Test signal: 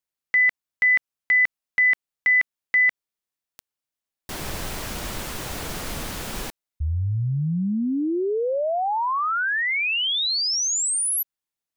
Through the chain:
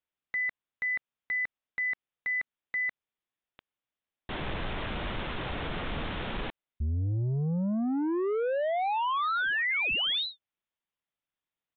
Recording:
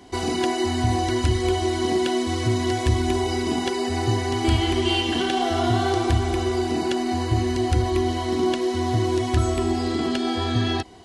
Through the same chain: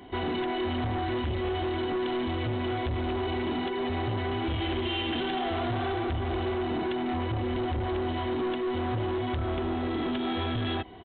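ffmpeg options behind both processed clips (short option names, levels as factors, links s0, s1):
-af "alimiter=limit=0.188:level=0:latency=1:release=147,aresample=8000,asoftclip=type=tanh:threshold=0.0473,aresample=44100"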